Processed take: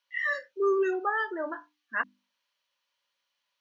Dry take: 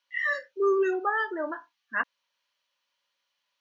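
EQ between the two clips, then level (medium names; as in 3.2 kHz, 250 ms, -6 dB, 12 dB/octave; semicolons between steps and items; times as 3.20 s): hum notches 50/100/150/200/250/300 Hz; -1.5 dB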